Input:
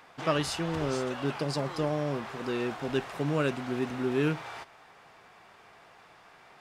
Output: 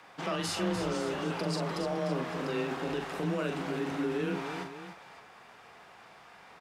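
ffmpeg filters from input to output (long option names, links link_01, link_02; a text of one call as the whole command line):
ffmpeg -i in.wav -filter_complex "[0:a]alimiter=level_in=1dB:limit=-24dB:level=0:latency=1:release=29,volume=-1dB,afreqshift=25,asplit=2[link_01][link_02];[link_02]aecho=0:1:42|298|561:0.531|0.376|0.211[link_03];[link_01][link_03]amix=inputs=2:normalize=0" out.wav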